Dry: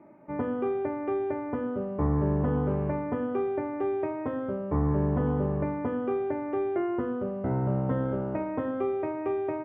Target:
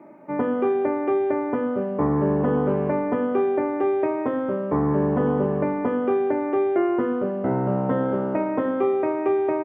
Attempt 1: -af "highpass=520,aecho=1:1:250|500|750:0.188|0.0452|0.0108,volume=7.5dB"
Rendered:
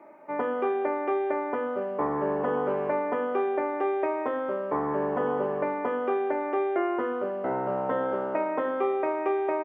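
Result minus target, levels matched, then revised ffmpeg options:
250 Hz band -4.5 dB
-af "highpass=190,aecho=1:1:250|500|750:0.188|0.0452|0.0108,volume=7.5dB"

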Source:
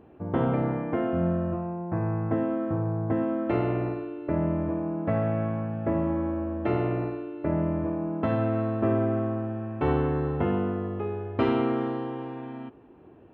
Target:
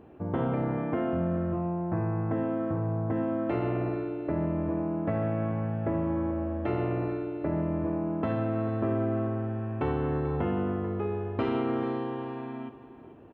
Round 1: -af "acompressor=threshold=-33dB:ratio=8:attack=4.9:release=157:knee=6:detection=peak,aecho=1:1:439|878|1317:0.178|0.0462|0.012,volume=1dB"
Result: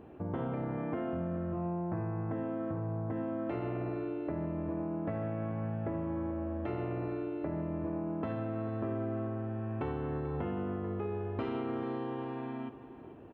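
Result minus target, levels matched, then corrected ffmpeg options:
compressor: peak gain reduction +7.5 dB
-af "acompressor=threshold=-24.5dB:ratio=8:attack=4.9:release=157:knee=6:detection=peak,aecho=1:1:439|878|1317:0.178|0.0462|0.012,volume=1dB"

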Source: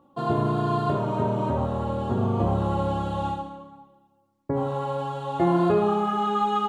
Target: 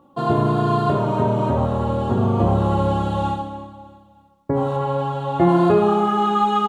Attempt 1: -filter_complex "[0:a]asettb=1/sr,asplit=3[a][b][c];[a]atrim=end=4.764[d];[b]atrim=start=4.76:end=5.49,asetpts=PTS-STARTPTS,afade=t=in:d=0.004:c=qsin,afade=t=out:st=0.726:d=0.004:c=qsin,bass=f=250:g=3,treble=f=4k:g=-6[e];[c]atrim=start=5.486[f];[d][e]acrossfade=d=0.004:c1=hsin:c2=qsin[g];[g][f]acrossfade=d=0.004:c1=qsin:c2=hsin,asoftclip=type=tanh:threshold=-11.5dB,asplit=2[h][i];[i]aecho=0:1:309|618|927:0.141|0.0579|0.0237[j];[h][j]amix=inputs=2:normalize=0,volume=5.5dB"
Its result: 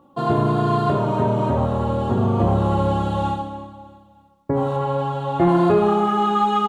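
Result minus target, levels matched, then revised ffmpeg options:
soft clip: distortion +14 dB
-filter_complex "[0:a]asettb=1/sr,asplit=3[a][b][c];[a]atrim=end=4.764[d];[b]atrim=start=4.76:end=5.49,asetpts=PTS-STARTPTS,afade=t=in:d=0.004:c=qsin,afade=t=out:st=0.726:d=0.004:c=qsin,bass=f=250:g=3,treble=f=4k:g=-6[e];[c]atrim=start=5.486[f];[d][e]acrossfade=d=0.004:c1=hsin:c2=qsin[g];[g][f]acrossfade=d=0.004:c1=qsin:c2=hsin,asoftclip=type=tanh:threshold=-3.5dB,asplit=2[h][i];[i]aecho=0:1:309|618|927:0.141|0.0579|0.0237[j];[h][j]amix=inputs=2:normalize=0,volume=5.5dB"

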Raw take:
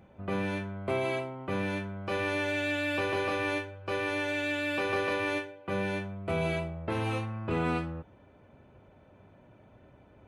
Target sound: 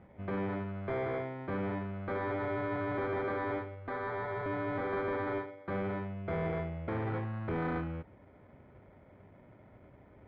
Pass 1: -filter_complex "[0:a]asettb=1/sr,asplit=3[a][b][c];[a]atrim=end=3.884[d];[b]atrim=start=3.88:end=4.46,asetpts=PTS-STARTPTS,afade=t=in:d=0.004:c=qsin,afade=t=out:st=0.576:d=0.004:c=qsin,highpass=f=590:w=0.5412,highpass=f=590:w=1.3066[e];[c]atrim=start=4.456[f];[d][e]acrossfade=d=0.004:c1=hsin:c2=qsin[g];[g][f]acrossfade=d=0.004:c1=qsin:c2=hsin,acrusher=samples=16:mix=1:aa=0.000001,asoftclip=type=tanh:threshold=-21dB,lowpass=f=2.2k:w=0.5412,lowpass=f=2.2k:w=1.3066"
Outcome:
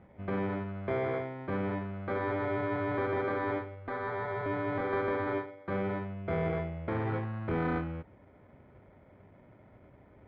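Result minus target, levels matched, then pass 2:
soft clip: distortion -10 dB
-filter_complex "[0:a]asettb=1/sr,asplit=3[a][b][c];[a]atrim=end=3.884[d];[b]atrim=start=3.88:end=4.46,asetpts=PTS-STARTPTS,afade=t=in:d=0.004:c=qsin,afade=t=out:st=0.576:d=0.004:c=qsin,highpass=f=590:w=0.5412,highpass=f=590:w=1.3066[e];[c]atrim=start=4.456[f];[d][e]acrossfade=d=0.004:c1=hsin:c2=qsin[g];[g][f]acrossfade=d=0.004:c1=qsin:c2=hsin,acrusher=samples=16:mix=1:aa=0.000001,asoftclip=type=tanh:threshold=-29dB,lowpass=f=2.2k:w=0.5412,lowpass=f=2.2k:w=1.3066"

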